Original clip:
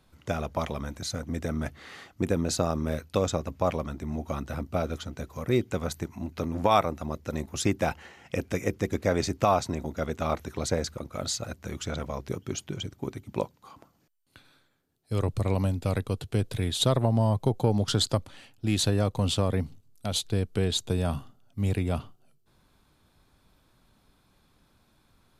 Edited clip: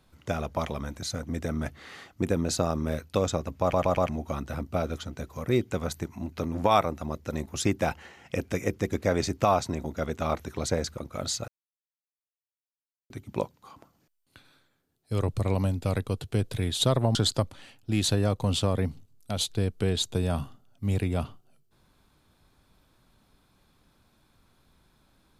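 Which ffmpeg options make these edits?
ffmpeg -i in.wav -filter_complex "[0:a]asplit=8[link_01][link_02][link_03][link_04][link_05][link_06][link_07][link_08];[link_01]atrim=end=3.732[link_09];[link_02]atrim=start=3.608:end=3.732[link_10];[link_03]atrim=start=3.608:end=3.732[link_11];[link_04]atrim=start=3.608:end=3.732[link_12];[link_05]atrim=start=4.088:end=11.48,asetpts=PTS-STARTPTS,afade=type=out:start_time=7.388:duration=0.004:curve=hsin[link_13];[link_06]atrim=start=11.48:end=13.1,asetpts=PTS-STARTPTS,volume=0[link_14];[link_07]atrim=start=13.1:end=17.152,asetpts=PTS-STARTPTS,afade=type=in:duration=0.004:curve=hsin[link_15];[link_08]atrim=start=17.898[link_16];[link_09][link_10]acrossfade=duration=0.004:curve1=hsin:curve2=hsin[link_17];[link_17][link_11]acrossfade=duration=0.004:curve1=hsin:curve2=hsin[link_18];[link_18][link_12]acrossfade=duration=0.004:curve1=hsin:curve2=hsin[link_19];[link_13][link_14][link_15]concat=n=3:v=0:a=1[link_20];[link_19][link_20]acrossfade=duration=0.004:curve1=hsin:curve2=hsin[link_21];[link_21][link_16]acrossfade=duration=0.004:curve1=hsin:curve2=hsin" out.wav

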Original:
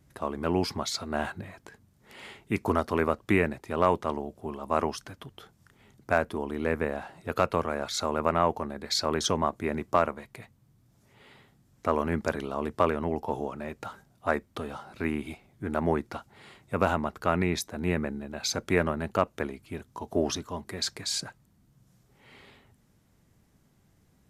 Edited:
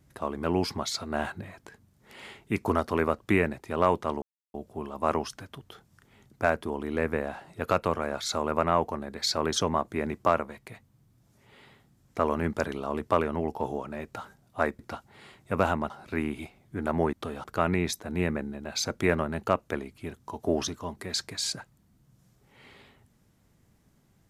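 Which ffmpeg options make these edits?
ffmpeg -i in.wav -filter_complex "[0:a]asplit=6[link_01][link_02][link_03][link_04][link_05][link_06];[link_01]atrim=end=4.22,asetpts=PTS-STARTPTS,afade=type=out:start_time=4.216:duration=0.004:curve=hsin,apad=pad_dur=0.32[link_07];[link_02]atrim=start=4.22:end=14.472,asetpts=PTS-STARTPTS,afade=type=in:duration=0.004:curve=hsin[link_08];[link_03]atrim=start=16.008:end=17.122[link_09];[link_04]atrim=start=14.778:end=16.012[link_10];[link_05]atrim=start=14.468:end=14.782[link_11];[link_06]atrim=start=17.118[link_12];[link_07][link_08]concat=n=2:v=0:a=1[link_13];[link_13][link_09]acrossfade=duration=0.004:curve1=hsin:curve2=hsin[link_14];[link_14][link_10]acrossfade=duration=0.004:curve1=hsin:curve2=hsin[link_15];[link_15][link_11]acrossfade=duration=0.004:curve1=hsin:curve2=hsin[link_16];[link_16][link_12]acrossfade=duration=0.004:curve1=hsin:curve2=hsin" out.wav

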